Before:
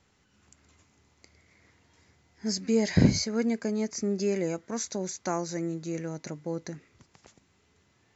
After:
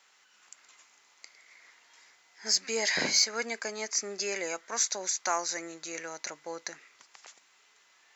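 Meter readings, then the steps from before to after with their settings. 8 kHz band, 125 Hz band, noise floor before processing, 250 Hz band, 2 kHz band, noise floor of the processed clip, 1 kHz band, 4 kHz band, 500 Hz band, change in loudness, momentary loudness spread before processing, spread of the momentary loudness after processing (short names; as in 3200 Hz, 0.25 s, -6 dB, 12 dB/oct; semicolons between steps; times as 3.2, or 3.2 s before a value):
n/a, -24.5 dB, -68 dBFS, -16.5 dB, +7.5 dB, -64 dBFS, +3.5 dB, +7.5 dB, -5.5 dB, -0.5 dB, 14 LU, 15 LU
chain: HPF 1000 Hz 12 dB/oct; in parallel at -10 dB: soft clip -28 dBFS, distortion -15 dB; on the sum: gain +5.5 dB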